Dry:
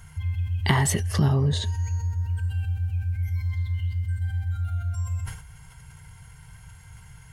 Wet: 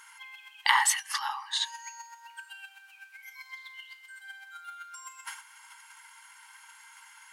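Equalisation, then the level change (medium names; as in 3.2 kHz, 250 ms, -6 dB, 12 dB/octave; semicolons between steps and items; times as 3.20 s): brick-wall FIR high-pass 790 Hz; treble shelf 8.4 kHz -5.5 dB; +4.0 dB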